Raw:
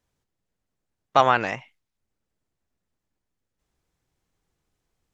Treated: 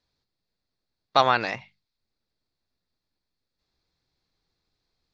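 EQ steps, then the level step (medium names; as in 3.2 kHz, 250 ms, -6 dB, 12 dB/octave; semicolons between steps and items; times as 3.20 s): resonant low-pass 4.4 kHz, resonance Q 5.5; hum notches 50/100/150/200 Hz; band-stop 3 kHz, Q 8.4; -2.5 dB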